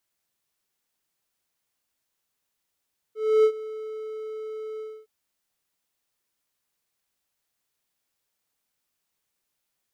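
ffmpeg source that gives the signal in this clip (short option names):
-f lavfi -i "aevalsrc='0.266*(1-4*abs(mod(435*t+0.25,1)-0.5))':d=1.913:s=44100,afade=t=in:d=0.291,afade=t=out:st=0.291:d=0.075:silence=0.119,afade=t=out:st=1.65:d=0.263"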